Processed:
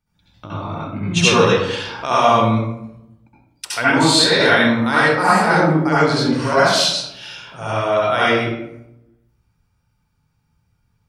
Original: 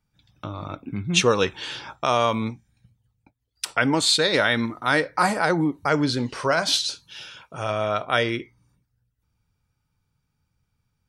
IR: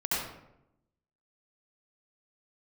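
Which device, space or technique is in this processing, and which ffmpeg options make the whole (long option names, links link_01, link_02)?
bathroom: -filter_complex "[1:a]atrim=start_sample=2205[link_01];[0:a][link_01]afir=irnorm=-1:irlink=0,volume=-1dB"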